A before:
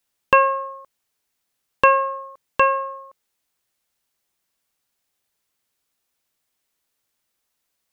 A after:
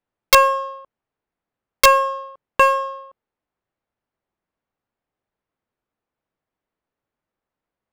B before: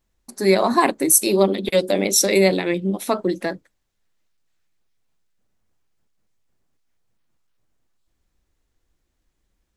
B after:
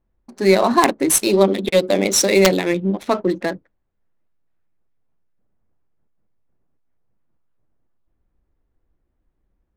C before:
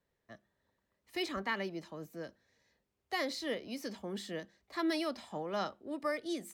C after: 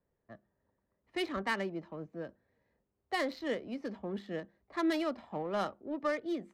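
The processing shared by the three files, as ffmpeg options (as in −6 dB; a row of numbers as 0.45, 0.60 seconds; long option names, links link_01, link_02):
-af "adynamicsmooth=sensitivity=6.5:basefreq=1400,aeval=exprs='0.841*(cos(1*acos(clip(val(0)/0.841,-1,1)))-cos(1*PI/2))+0.0473*(cos(2*acos(clip(val(0)/0.841,-1,1)))-cos(2*PI/2))':channel_layout=same,aeval=exprs='(mod(1.58*val(0)+1,2)-1)/1.58':channel_layout=same,volume=2.5dB"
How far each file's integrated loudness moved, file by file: +3.0, +1.5, +1.5 LU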